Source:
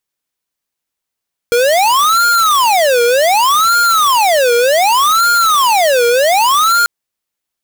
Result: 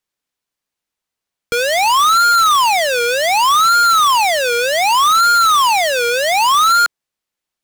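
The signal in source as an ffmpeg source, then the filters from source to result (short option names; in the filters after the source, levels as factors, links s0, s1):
-f lavfi -i "aevalsrc='0.299*(2*lt(mod((941.5*t-468.5/(2*PI*0.66)*sin(2*PI*0.66*t)),1),0.5)-1)':d=5.34:s=44100"
-filter_complex "[0:a]highshelf=f=9000:g=-8,acrossover=split=310|840|3400[s0][s1][s2][s3];[s1]asoftclip=type=tanh:threshold=0.0596[s4];[s0][s4][s2][s3]amix=inputs=4:normalize=0"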